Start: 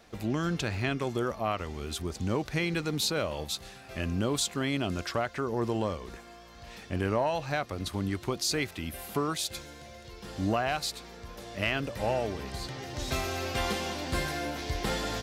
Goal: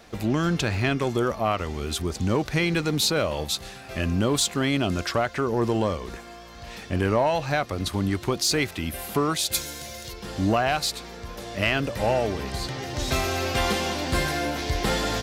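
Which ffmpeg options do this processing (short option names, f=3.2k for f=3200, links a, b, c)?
-filter_complex "[0:a]asplit=3[a][b][c];[a]afade=t=out:st=9.51:d=0.02[d];[b]aemphasis=mode=production:type=75kf,afade=t=in:st=9.51:d=0.02,afade=t=out:st=10.12:d=0.02[e];[c]afade=t=in:st=10.12:d=0.02[f];[d][e][f]amix=inputs=3:normalize=0,asplit=2[g][h];[h]volume=28.5dB,asoftclip=hard,volume=-28.5dB,volume=-9.5dB[i];[g][i]amix=inputs=2:normalize=0,volume=4.5dB"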